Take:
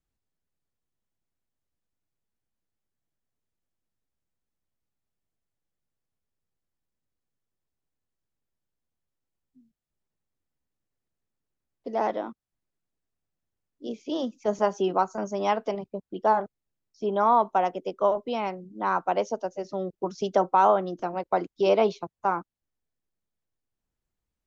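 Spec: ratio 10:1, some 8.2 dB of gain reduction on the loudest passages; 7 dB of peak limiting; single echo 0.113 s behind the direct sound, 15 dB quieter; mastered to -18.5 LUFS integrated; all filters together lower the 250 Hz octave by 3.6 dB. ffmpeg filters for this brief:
-af "equalizer=f=250:t=o:g=-5.5,acompressor=threshold=-24dB:ratio=10,alimiter=limit=-21dB:level=0:latency=1,aecho=1:1:113:0.178,volume=15dB"

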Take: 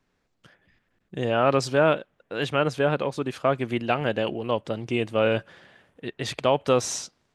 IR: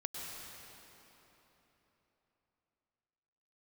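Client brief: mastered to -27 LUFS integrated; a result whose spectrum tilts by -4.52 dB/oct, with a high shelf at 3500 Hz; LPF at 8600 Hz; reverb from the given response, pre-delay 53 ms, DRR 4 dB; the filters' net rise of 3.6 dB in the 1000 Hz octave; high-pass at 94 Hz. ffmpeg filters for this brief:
-filter_complex "[0:a]highpass=94,lowpass=8.6k,equalizer=f=1k:t=o:g=4.5,highshelf=f=3.5k:g=4,asplit=2[a][b];[1:a]atrim=start_sample=2205,adelay=53[c];[b][c]afir=irnorm=-1:irlink=0,volume=-4.5dB[d];[a][d]amix=inputs=2:normalize=0,volume=-4.5dB"

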